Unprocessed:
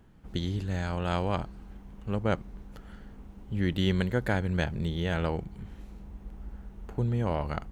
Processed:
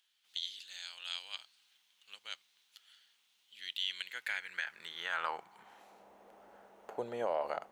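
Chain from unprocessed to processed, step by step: high-pass sweep 3500 Hz -> 600 Hz, 3.69–6.12; limiter -21 dBFS, peak gain reduction 8.5 dB; notches 50/100/150 Hz; gain -2 dB

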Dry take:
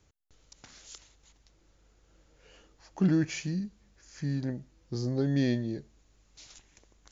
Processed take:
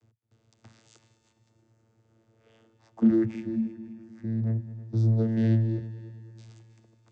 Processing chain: 3.25–4.46 LPF 1400 Hz 6 dB/oct; vocoder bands 16, saw 112 Hz; multi-head echo 0.106 s, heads second and third, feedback 52%, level -17 dB; gain +6 dB

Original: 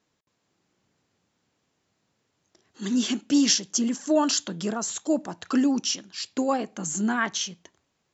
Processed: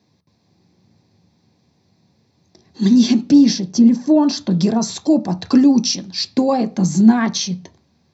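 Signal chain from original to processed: 3.31–4.51 high shelf 2700 Hz -12 dB; in parallel at +0.5 dB: compressor, threshold -27 dBFS, peak gain reduction 10 dB; on the sum: reverb RT60 0.30 s, pre-delay 3 ms, DRR 9 dB; gain -2.5 dB

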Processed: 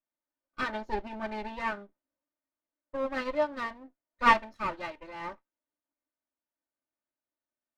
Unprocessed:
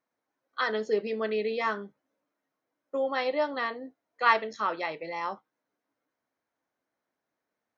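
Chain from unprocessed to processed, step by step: minimum comb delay 3.3 ms; high shelf 4400 Hz -11.5 dB; upward expander 1.5:1, over -47 dBFS; gain +3 dB

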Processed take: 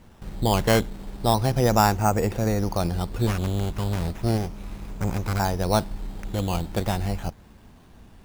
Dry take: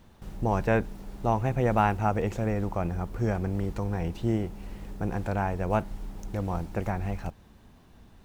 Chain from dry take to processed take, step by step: 3.27–5.4 minimum comb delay 0.83 ms; decimation with a swept rate 9×, swing 60% 0.35 Hz; gain +4.5 dB

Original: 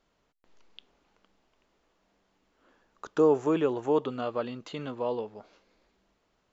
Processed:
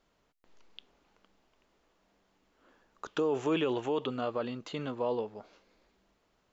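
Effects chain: 3.07–4.07 bell 3000 Hz +11 dB 1 oct; limiter -21.5 dBFS, peak gain reduction 9.5 dB

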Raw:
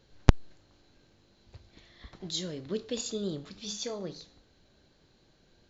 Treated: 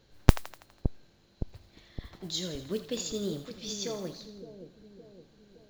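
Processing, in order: modulation noise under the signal 24 dB; split-band echo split 650 Hz, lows 0.565 s, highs 82 ms, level -10 dB

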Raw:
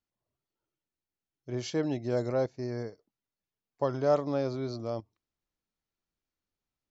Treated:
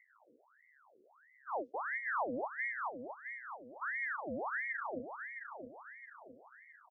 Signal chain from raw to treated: inverse Chebyshev low-pass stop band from 560 Hz, stop band 60 dB; upward compressor, threshold -49 dBFS; on a send: feedback echo 0.665 s, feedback 44%, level -7.5 dB; on the sum: ring modulator with a swept carrier 1200 Hz, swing 70%, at 1.5 Hz; gain +4.5 dB

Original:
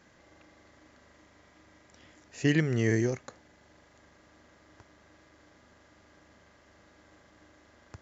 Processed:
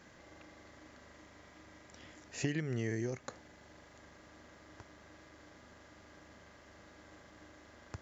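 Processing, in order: compressor 8:1, threshold -34 dBFS, peak gain reduction 14 dB; gain +2 dB

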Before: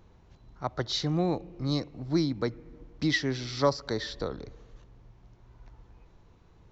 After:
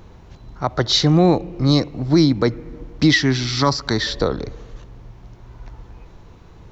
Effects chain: 3.12–4.07 bell 510 Hz -12.5 dB 0.55 oct; maximiser +18 dB; gain -4 dB

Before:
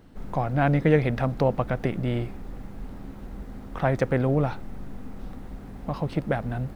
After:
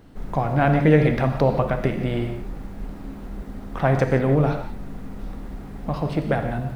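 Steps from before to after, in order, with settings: non-linear reverb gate 0.2 s flat, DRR 5 dB; gain +3 dB

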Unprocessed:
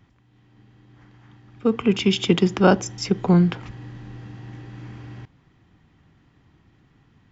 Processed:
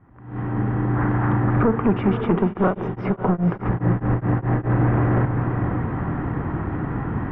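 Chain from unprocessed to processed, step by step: recorder AGC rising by 76 dB/s; low shelf 320 Hz -4.5 dB; hard clip -18.5 dBFS, distortion -9 dB; LPF 1500 Hz 24 dB/oct; diffused feedback echo 0.523 s, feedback 48%, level -7 dB; 2.44–4.79 beating tremolo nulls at 4.8 Hz; gain +4.5 dB

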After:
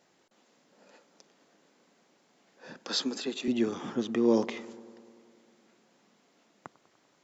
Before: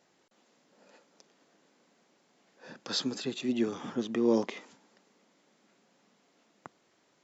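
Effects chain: 2.77–3.48 HPF 210 Hz 24 dB/oct; analogue delay 98 ms, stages 1024, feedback 75%, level -20 dB; gain +1.5 dB

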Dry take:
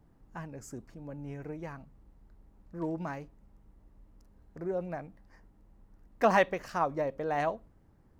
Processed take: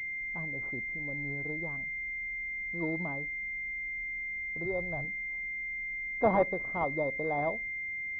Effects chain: 4.65–5.05 resonant low shelf 150 Hz +8.5 dB, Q 3; pulse-width modulation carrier 2100 Hz

